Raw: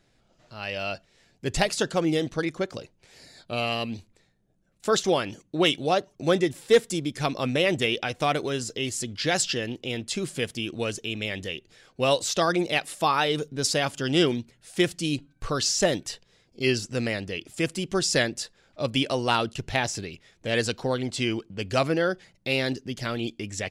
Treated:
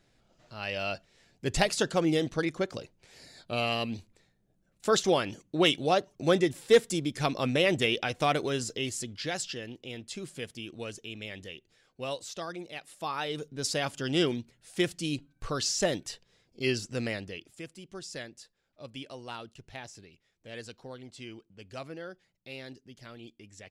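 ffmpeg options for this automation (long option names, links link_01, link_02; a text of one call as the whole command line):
ffmpeg -i in.wav -af "volume=10dB,afade=type=out:start_time=8.64:duration=0.73:silence=0.398107,afade=type=out:start_time=11.4:duration=1.34:silence=0.446684,afade=type=in:start_time=12.74:duration=1.15:silence=0.251189,afade=type=out:start_time=17.11:duration=0.54:silence=0.237137" out.wav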